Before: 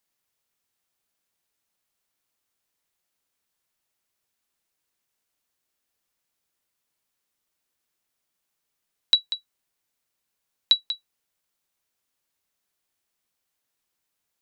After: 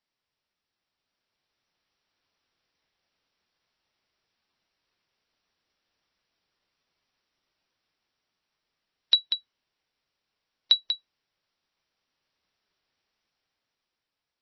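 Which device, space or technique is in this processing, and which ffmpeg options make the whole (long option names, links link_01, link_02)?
low-bitrate web radio: -filter_complex "[0:a]asplit=3[link_01][link_02][link_03];[link_01]afade=type=out:start_time=9.16:duration=0.02[link_04];[link_02]adynamicequalizer=threshold=0.01:dfrequency=3000:dqfactor=6.9:tfrequency=3000:tqfactor=6.9:attack=5:release=100:ratio=0.375:range=2.5:mode=boostabove:tftype=bell,afade=type=in:start_time=9.16:duration=0.02,afade=type=out:start_time=10.78:duration=0.02[link_05];[link_03]afade=type=in:start_time=10.78:duration=0.02[link_06];[link_04][link_05][link_06]amix=inputs=3:normalize=0,dynaudnorm=framelen=240:gausssize=11:maxgain=7dB,alimiter=limit=-5.5dB:level=0:latency=1:release=144,volume=-2dB" -ar 22050 -c:a libmp3lame -b:a 24k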